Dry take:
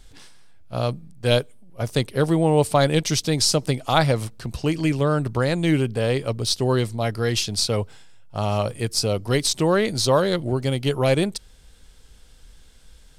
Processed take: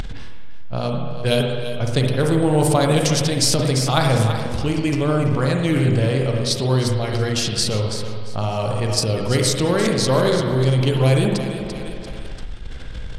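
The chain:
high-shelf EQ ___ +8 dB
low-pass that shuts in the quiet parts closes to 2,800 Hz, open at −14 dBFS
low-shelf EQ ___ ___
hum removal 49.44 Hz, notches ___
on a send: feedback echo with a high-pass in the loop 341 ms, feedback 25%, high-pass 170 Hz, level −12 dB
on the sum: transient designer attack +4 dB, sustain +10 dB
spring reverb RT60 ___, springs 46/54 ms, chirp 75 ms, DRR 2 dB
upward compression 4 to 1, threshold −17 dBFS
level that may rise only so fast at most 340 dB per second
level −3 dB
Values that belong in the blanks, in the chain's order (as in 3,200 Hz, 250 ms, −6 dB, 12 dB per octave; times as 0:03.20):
7,100 Hz, 190 Hz, +5 dB, 28, 1.4 s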